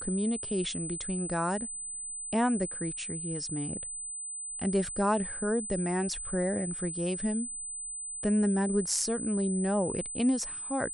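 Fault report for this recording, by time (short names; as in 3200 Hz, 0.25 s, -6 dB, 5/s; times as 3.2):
tone 8100 Hz -36 dBFS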